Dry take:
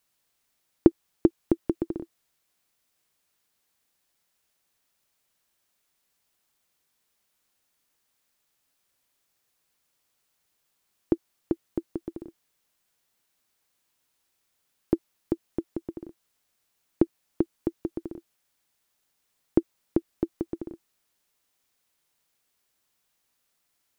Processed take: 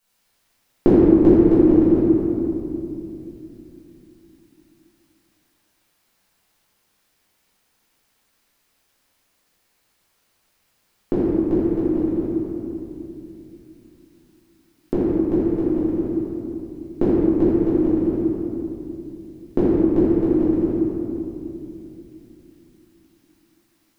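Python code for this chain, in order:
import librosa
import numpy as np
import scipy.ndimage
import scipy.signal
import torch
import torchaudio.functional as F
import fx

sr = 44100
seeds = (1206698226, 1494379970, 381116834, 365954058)

y = fx.room_shoebox(x, sr, seeds[0], volume_m3=120.0, walls='hard', distance_m=1.6)
y = y * 10.0 ** (-1.0 / 20.0)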